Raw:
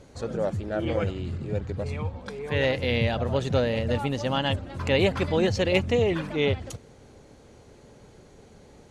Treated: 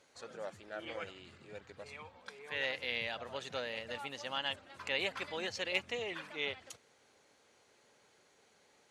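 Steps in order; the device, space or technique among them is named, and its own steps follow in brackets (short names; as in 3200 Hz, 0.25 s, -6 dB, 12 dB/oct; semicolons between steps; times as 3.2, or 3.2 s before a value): filter by subtraction (in parallel: LPF 1900 Hz 12 dB/oct + phase invert); on the sum: gain -8.5 dB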